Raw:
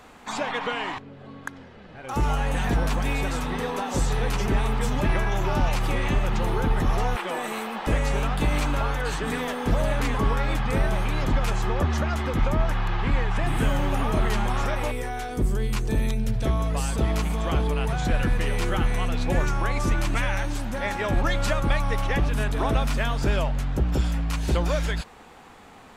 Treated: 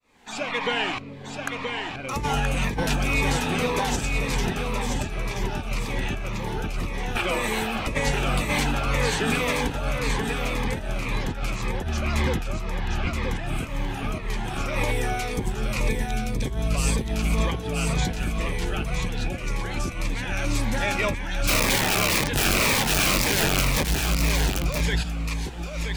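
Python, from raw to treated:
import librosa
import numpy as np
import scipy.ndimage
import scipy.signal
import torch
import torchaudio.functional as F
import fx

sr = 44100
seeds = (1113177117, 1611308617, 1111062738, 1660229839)

y = fx.fade_in_head(x, sr, length_s=0.8)
y = fx.peak_eq(y, sr, hz=4900.0, db=3.0, octaves=1.5)
y = fx.hum_notches(y, sr, base_hz=50, count=6)
y = fx.overflow_wrap(y, sr, gain_db=21.0, at=(21.47, 23.84))
y = fx.over_compress(y, sr, threshold_db=-26.0, ratio=-0.5)
y = fx.peak_eq(y, sr, hz=2400.0, db=7.0, octaves=0.33)
y = y + 10.0 ** (-5.0 / 20.0) * np.pad(y, (int(975 * sr / 1000.0), 0))[:len(y)]
y = fx.notch_cascade(y, sr, direction='falling', hz=1.9)
y = y * librosa.db_to_amplitude(2.0)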